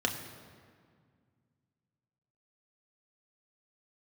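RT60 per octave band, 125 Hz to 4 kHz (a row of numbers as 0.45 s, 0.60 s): 3.0 s, 2.7 s, 2.0 s, 1.9 s, 1.7 s, 1.3 s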